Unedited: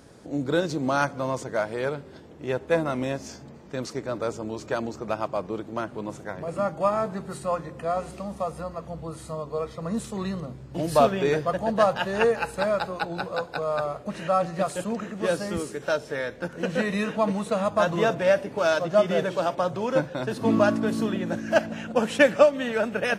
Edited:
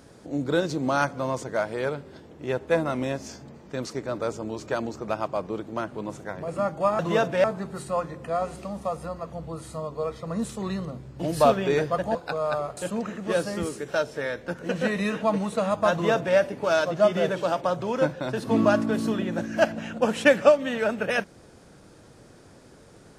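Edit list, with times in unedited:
11.70–13.41 s: delete
14.03–14.71 s: delete
17.86–18.31 s: copy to 6.99 s

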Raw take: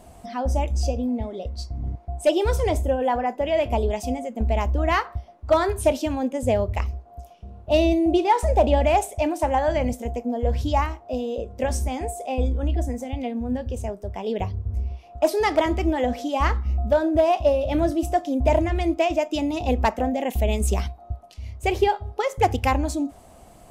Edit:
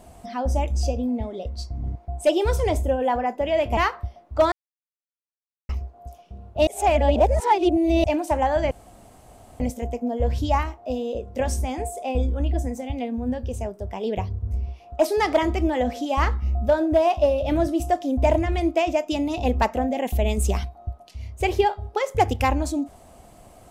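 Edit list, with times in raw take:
3.77–4.89 s: delete
5.64–6.81 s: mute
7.79–9.16 s: reverse
9.83 s: insert room tone 0.89 s

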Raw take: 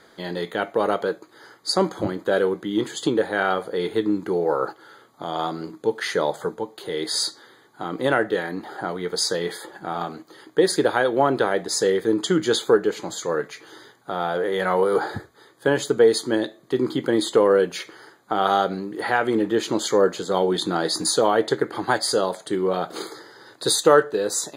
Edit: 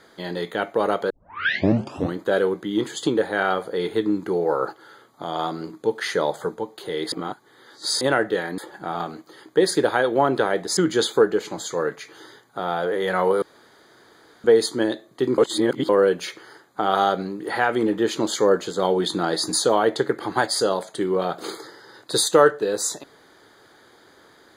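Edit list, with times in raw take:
1.10 s: tape start 1.07 s
7.12–8.01 s: reverse
8.58–9.59 s: delete
11.78–12.29 s: delete
14.94–15.96 s: room tone
16.90–17.41 s: reverse

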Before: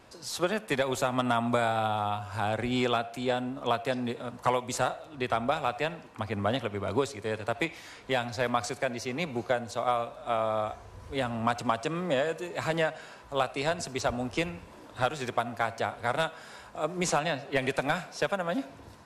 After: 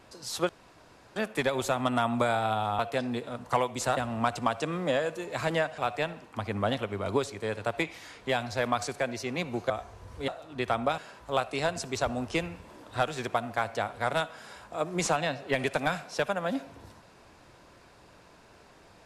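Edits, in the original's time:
0.49 s: insert room tone 0.67 s
2.12–3.72 s: delete
4.90–5.60 s: swap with 11.20–13.01 s
9.52–10.62 s: delete

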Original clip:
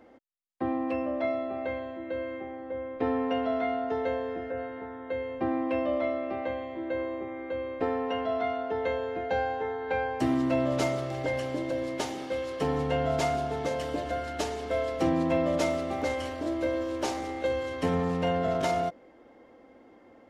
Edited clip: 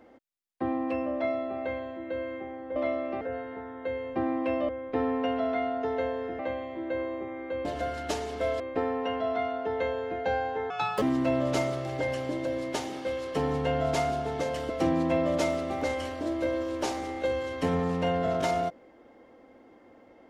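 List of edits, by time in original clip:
2.76–4.46 s: swap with 5.94–6.39 s
9.75–10.27 s: speed 164%
13.95–14.90 s: move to 7.65 s

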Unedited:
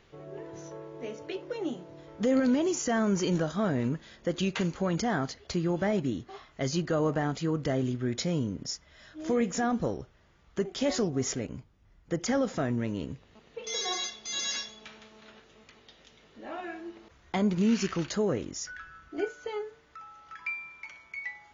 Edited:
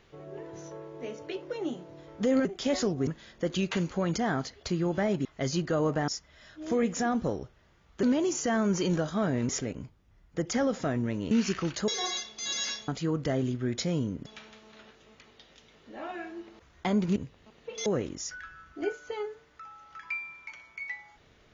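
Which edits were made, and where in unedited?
2.45–3.91 s: swap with 10.61–11.23 s
6.09–6.45 s: delete
7.28–8.66 s: move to 14.75 s
13.05–13.75 s: swap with 17.65–18.22 s

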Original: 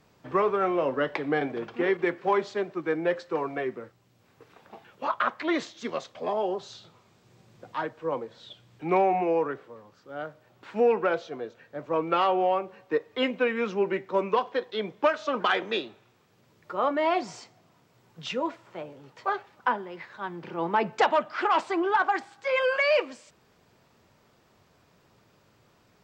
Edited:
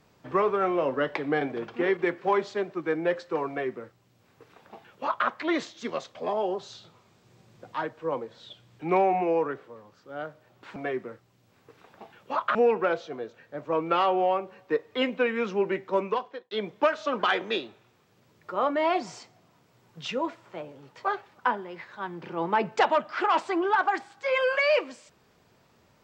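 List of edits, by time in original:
3.48–5.27 s: copy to 10.76 s
14.19–14.72 s: fade out linear

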